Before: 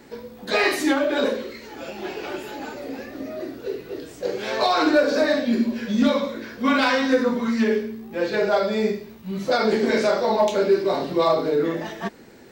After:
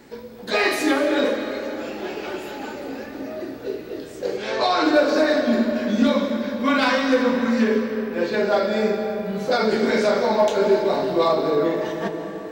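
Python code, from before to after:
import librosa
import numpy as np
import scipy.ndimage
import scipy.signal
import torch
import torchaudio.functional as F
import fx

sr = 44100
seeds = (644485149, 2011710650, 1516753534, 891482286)

y = fx.lowpass(x, sr, hz=7900.0, slope=12, at=(4.37, 4.85))
y = fx.rev_freeverb(y, sr, rt60_s=3.8, hf_ratio=0.55, predelay_ms=115, drr_db=6.0)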